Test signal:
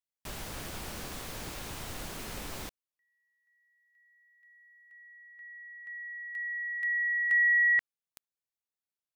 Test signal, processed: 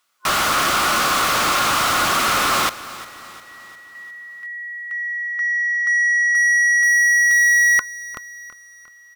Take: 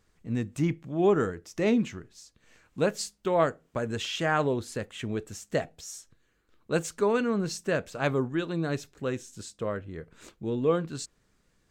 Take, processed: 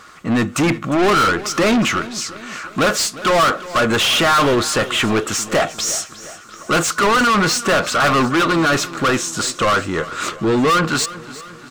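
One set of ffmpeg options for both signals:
-filter_complex "[0:a]superequalizer=7b=0.631:10b=2.82,asplit=2[a][b];[b]highpass=f=720:p=1,volume=36dB,asoftclip=type=tanh:threshold=-7.5dB[c];[a][c]amix=inputs=2:normalize=0,lowpass=f=5k:p=1,volume=-6dB,aecho=1:1:354|708|1062|1416|1770:0.141|0.0749|0.0397|0.021|0.0111"

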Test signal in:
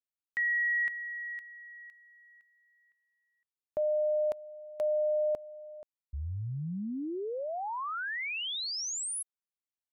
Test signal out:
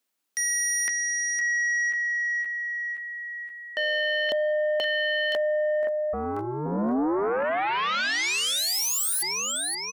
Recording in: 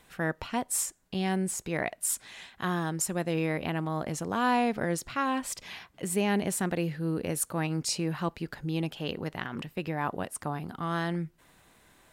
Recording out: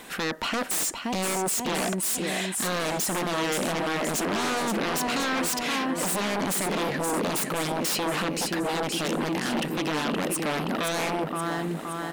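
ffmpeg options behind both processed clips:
-filter_complex "[0:a]alimiter=level_in=2dB:limit=-24dB:level=0:latency=1:release=28,volume=-2dB,asplit=2[a][b];[b]aecho=0:1:522|1044|1566|2088|2610|3132|3654:0.335|0.191|0.109|0.062|0.0354|0.0202|0.0115[c];[a][c]amix=inputs=2:normalize=0,aeval=exprs='0.075*sin(PI/2*4.47*val(0)/0.075)':c=same,lowshelf=f=160:t=q:w=1.5:g=-11,volume=-1dB"

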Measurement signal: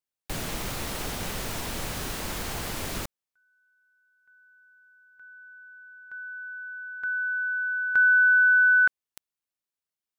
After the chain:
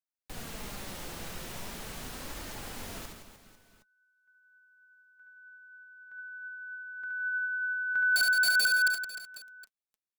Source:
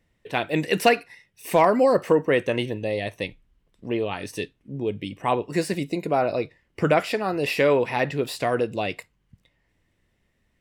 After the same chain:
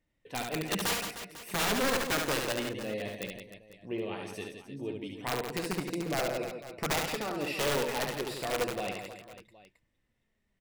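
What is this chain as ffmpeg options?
-af "flanger=delay=3.2:depth=3:regen=59:speed=0.41:shape=triangular,aeval=exprs='(mod(7.94*val(0)+1,2)-1)/7.94':c=same,aecho=1:1:70|168|305.2|497.3|766.2:0.631|0.398|0.251|0.158|0.1,volume=-6.5dB"

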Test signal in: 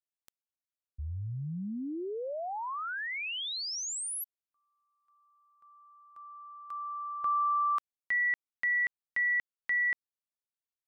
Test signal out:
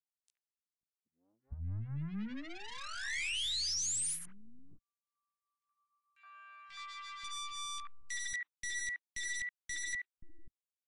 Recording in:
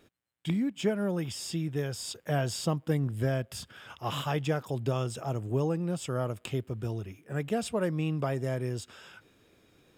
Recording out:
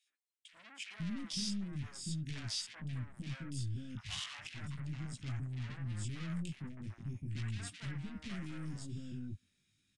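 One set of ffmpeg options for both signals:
-filter_complex "[0:a]afwtdn=0.01,flanger=delay=15.5:depth=5.2:speed=0.39,highshelf=f=4.1k:g=7,alimiter=level_in=1.5dB:limit=-24dB:level=0:latency=1:release=109,volume=-1.5dB,aeval=exprs='(tanh(141*val(0)+0.5)-tanh(0.5))/141':c=same,firequalizer=gain_entry='entry(220,0);entry(460,-21);entry(1900,3)':delay=0.05:min_phase=1,aeval=exprs='0.0237*(cos(1*acos(clip(val(0)/0.0237,-1,1)))-cos(1*PI/2))+0.000376*(cos(6*acos(clip(val(0)/0.0237,-1,1)))-cos(6*PI/2))':c=same,acrossover=split=500|2100[a][b][c];[b]adelay=70[d];[a]adelay=530[e];[e][d][c]amix=inputs=3:normalize=0,volume=7dB" -ar 22050 -c:a aac -b:a 64k

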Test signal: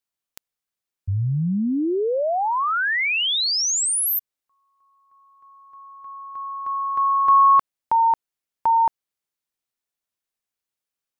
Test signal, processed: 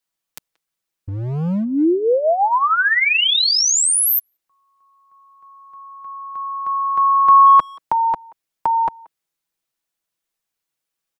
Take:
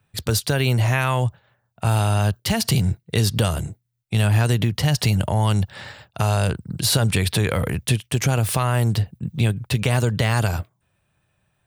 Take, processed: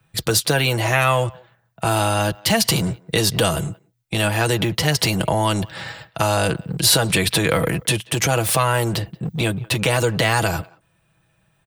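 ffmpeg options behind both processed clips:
-filter_complex "[0:a]aecho=1:1:6.1:0.5,acrossover=split=230|1700[a][b][c];[a]volume=29dB,asoftclip=hard,volume=-29dB[d];[d][b][c]amix=inputs=3:normalize=0,asplit=2[e][f];[f]adelay=180,highpass=300,lowpass=3.4k,asoftclip=type=hard:threshold=-16dB,volume=-24dB[g];[e][g]amix=inputs=2:normalize=0,volume=4.5dB"

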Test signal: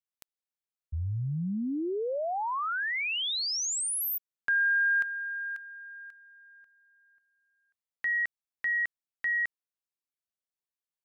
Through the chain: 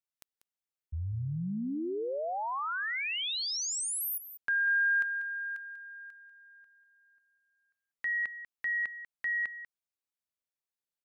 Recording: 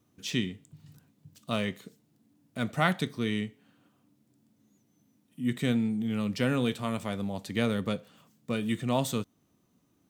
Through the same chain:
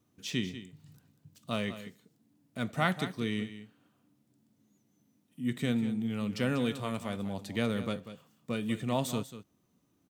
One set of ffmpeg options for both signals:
-af "aecho=1:1:192:0.237,volume=-3dB"

